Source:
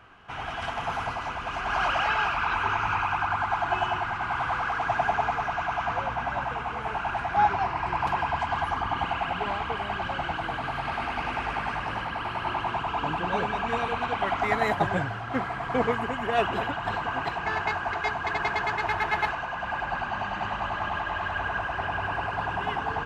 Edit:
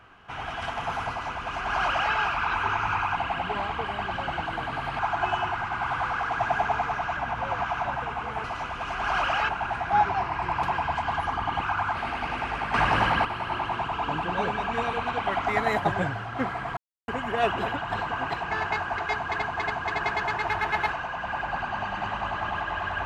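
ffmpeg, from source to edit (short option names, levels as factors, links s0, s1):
-filter_complex "[0:a]asplit=15[s0][s1][s2][s3][s4][s5][s6][s7][s8][s9][s10][s11][s12][s13][s14];[s0]atrim=end=3.162[s15];[s1]atrim=start=9.068:end=10.902[s16];[s2]atrim=start=3.478:end=5.662[s17];[s3]atrim=start=5.658:end=6.342,asetpts=PTS-STARTPTS,areverse[s18];[s4]atrim=start=6.338:end=6.932[s19];[s5]atrim=start=1.098:end=2.152[s20];[s6]atrim=start=6.928:end=9.072[s21];[s7]atrim=start=3.158:end=3.482[s22];[s8]atrim=start=10.898:end=11.692[s23];[s9]atrim=start=11.688:end=12.202,asetpts=PTS-STARTPTS,volume=2.82[s24];[s10]atrim=start=12.198:end=15.72,asetpts=PTS-STARTPTS,afade=t=out:st=3.518:d=0.004:c=hsin[s25];[s11]atrim=start=15.72:end=16.03,asetpts=PTS-STARTPTS,volume=0[s26];[s12]atrim=start=16.03:end=18.372,asetpts=PTS-STARTPTS,afade=t=in:d=0.004:c=hsin[s27];[s13]atrim=start=18.088:end=18.372[s28];[s14]atrim=start=18.088[s29];[s15][s16]acrossfade=d=0.004:c1=hsin:c2=hsin[s30];[s30][s17]acrossfade=d=0.004:c1=hsin:c2=hsin[s31];[s31][s18]acrossfade=d=0.004:c1=hsin:c2=hsin[s32];[s32][s19]acrossfade=d=0.004:c1=hsin:c2=hsin[s33];[s33][s20]acrossfade=d=0.004:c1=hsin:c2=hsin[s34];[s34][s21]acrossfade=d=0.004:c1=hsin:c2=hsin[s35];[s35][s22]acrossfade=d=0.004:c1=hsin:c2=hsin[s36];[s36][s23]acrossfade=d=0.004:c1=hsin:c2=hsin[s37];[s37][s24]acrossfade=d=0.004:c1=hsin:c2=hsin[s38];[s25][s26][s27]concat=n=3:v=0:a=1[s39];[s38][s39]acrossfade=d=0.004:c1=hsin:c2=hsin[s40];[s40][s28]acrossfade=d=0.004:c1=hsin:c2=hsin[s41];[s41][s29]acrossfade=d=0.004:c1=hsin:c2=hsin"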